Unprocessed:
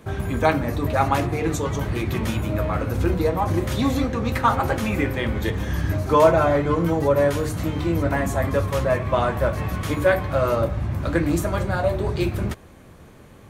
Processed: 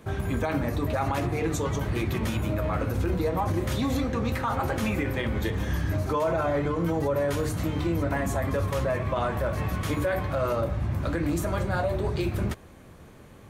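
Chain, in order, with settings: peak limiter -15.5 dBFS, peak gain reduction 11 dB; trim -2.5 dB

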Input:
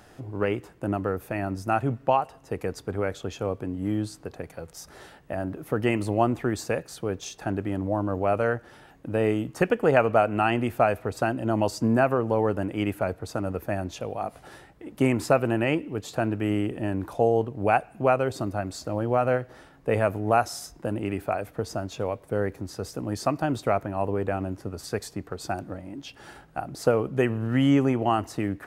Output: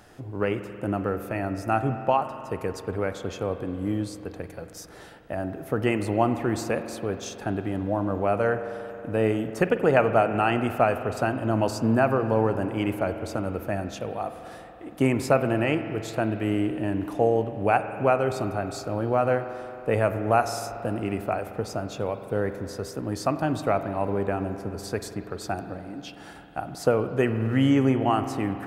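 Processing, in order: spring tank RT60 3.3 s, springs 45 ms, chirp 50 ms, DRR 9 dB

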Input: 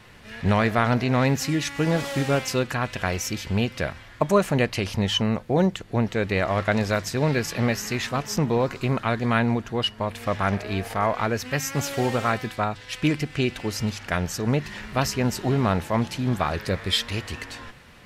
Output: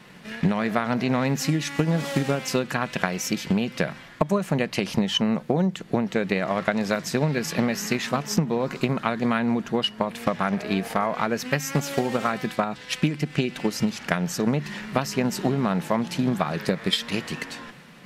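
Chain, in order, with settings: transient shaper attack +8 dB, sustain +2 dB; resonant low shelf 120 Hz -11 dB, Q 3; compression 6:1, threshold -19 dBFS, peak gain reduction 12 dB

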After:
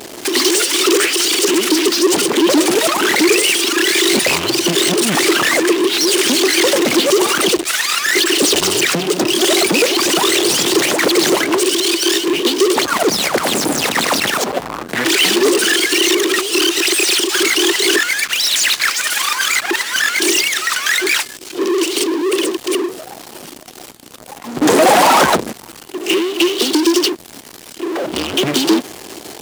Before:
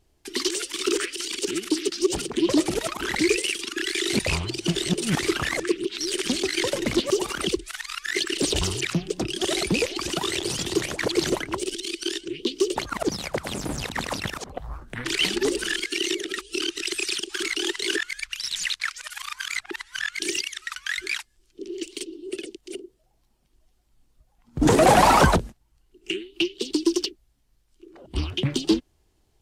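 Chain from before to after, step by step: power-law waveshaper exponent 0.35; Chebyshev high-pass 310 Hz, order 2; trim +1 dB

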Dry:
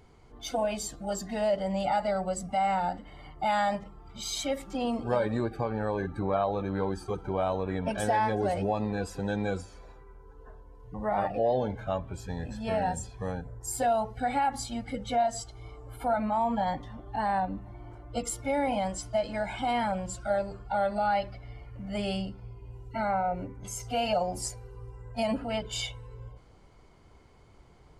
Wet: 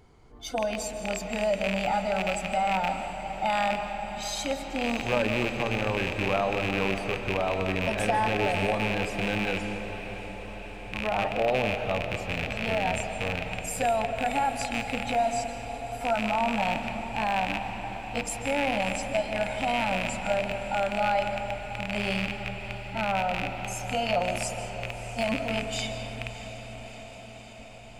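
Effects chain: rattle on loud lows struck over -36 dBFS, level -18 dBFS; echo that smears into a reverb 658 ms, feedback 70%, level -13 dB; algorithmic reverb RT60 2.6 s, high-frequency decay 0.5×, pre-delay 105 ms, DRR 7 dB

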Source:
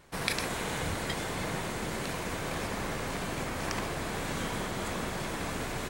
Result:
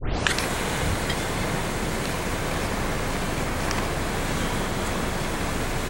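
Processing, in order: tape start-up on the opening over 0.37 s; bass shelf 73 Hz +6.5 dB; trim +7 dB

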